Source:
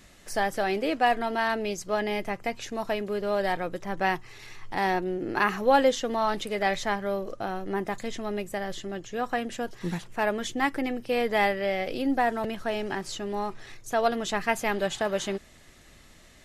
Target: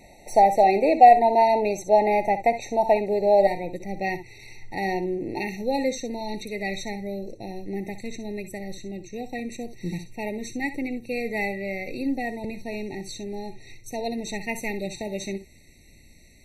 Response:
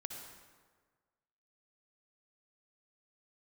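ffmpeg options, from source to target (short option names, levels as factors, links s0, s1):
-filter_complex "[0:a]asetnsamples=n=441:p=0,asendcmd='3.47 equalizer g -4;5.42 equalizer g -10.5',equalizer=f=780:t=o:w=1.4:g=11[s0];[1:a]atrim=start_sample=2205,atrim=end_sample=3087[s1];[s0][s1]afir=irnorm=-1:irlink=0,afftfilt=real='re*eq(mod(floor(b*sr/1024/920),2),0)':imag='im*eq(mod(floor(b*sr/1024/920),2),0)':win_size=1024:overlap=0.75,volume=2"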